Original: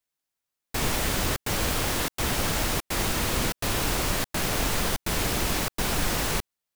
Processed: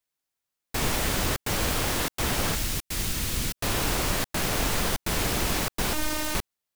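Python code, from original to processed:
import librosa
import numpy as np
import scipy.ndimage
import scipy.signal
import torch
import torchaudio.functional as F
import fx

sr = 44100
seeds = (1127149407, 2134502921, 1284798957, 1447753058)

y = fx.peak_eq(x, sr, hz=730.0, db=-11.5, octaves=2.8, at=(2.55, 3.57))
y = fx.robotise(y, sr, hz=306.0, at=(5.93, 6.35))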